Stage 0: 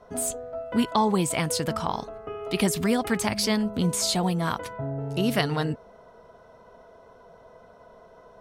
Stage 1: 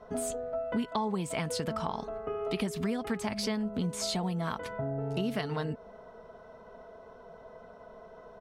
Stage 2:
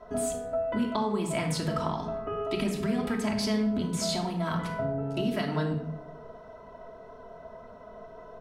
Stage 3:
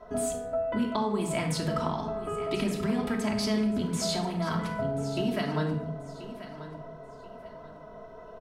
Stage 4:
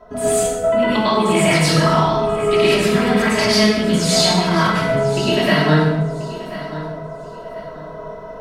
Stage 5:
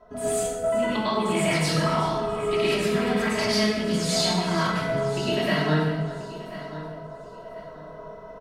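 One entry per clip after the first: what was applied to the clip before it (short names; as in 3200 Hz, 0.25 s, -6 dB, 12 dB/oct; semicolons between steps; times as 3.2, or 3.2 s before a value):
LPF 3900 Hz 6 dB/oct; comb 4.6 ms, depth 31%; compressor 4:1, threshold -30 dBFS, peak gain reduction 12.5 dB
shoebox room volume 1900 m³, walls furnished, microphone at 2.9 m
feedback echo 1.034 s, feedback 28%, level -14 dB
plate-style reverb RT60 0.79 s, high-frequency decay 0.85×, pre-delay 90 ms, DRR -9 dB; dynamic EQ 2600 Hz, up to +7 dB, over -41 dBFS, Q 0.7; gain +4 dB
echo 0.38 s -15 dB; gain -8.5 dB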